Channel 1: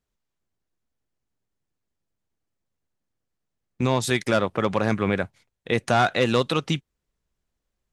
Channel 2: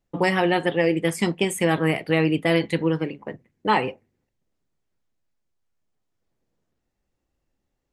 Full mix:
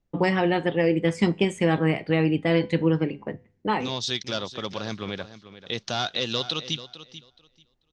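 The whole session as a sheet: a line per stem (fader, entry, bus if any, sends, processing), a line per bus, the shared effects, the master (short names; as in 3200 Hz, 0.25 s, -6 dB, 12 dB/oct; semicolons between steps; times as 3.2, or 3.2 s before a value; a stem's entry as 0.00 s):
-10.0 dB, 0.00 s, no send, echo send -14 dB, bit-crush 10-bit; band shelf 4300 Hz +14 dB 1.3 oct
-0.5 dB, 0.00 s, no send, no echo send, low shelf 360 Hz +6 dB; vocal rider 0.5 s; resonator 100 Hz, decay 0.47 s, harmonics all, mix 30%; auto duck -7 dB, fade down 0.25 s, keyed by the first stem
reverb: off
echo: feedback echo 0.439 s, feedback 17%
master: LPF 6900 Hz 24 dB/oct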